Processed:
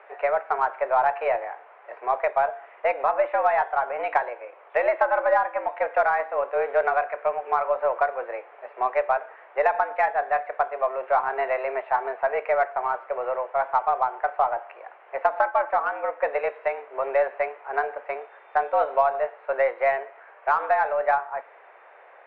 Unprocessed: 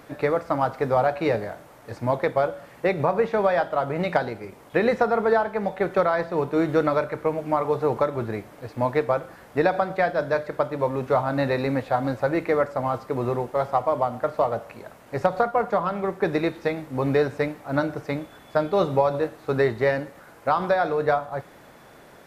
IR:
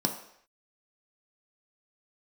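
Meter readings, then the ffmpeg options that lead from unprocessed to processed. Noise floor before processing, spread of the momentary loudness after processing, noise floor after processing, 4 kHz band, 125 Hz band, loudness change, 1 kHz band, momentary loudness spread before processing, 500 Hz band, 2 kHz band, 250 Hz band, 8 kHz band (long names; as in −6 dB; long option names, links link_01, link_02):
−49 dBFS, 9 LU, −51 dBFS, below −10 dB, below −30 dB, −0.5 dB, +3.0 dB, 9 LU, −2.0 dB, +2.0 dB, below −20 dB, can't be measured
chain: -af "highpass=frequency=340:width_type=q:width=0.5412,highpass=frequency=340:width_type=q:width=1.307,lowpass=frequency=2500:width_type=q:width=0.5176,lowpass=frequency=2500:width_type=q:width=0.7071,lowpass=frequency=2500:width_type=q:width=1.932,afreqshift=130,aeval=exprs='0.422*(cos(1*acos(clip(val(0)/0.422,-1,1)))-cos(1*PI/2))+0.00335*(cos(8*acos(clip(val(0)/0.422,-1,1)))-cos(8*PI/2))':channel_layout=same"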